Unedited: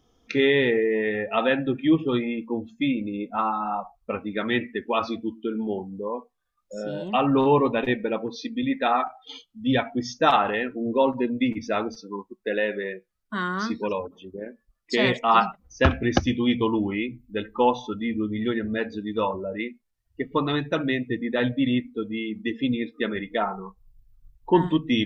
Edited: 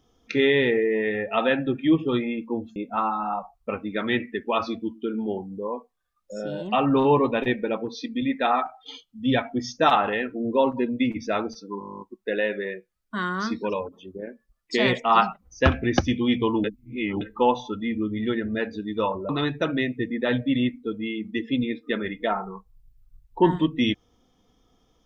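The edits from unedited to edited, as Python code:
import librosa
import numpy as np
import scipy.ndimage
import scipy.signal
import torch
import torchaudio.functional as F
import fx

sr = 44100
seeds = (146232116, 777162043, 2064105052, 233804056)

y = fx.edit(x, sr, fx.cut(start_s=2.76, length_s=0.41),
    fx.stutter(start_s=12.2, slice_s=0.02, count=12),
    fx.reverse_span(start_s=16.83, length_s=0.57),
    fx.cut(start_s=19.48, length_s=0.92), tone=tone)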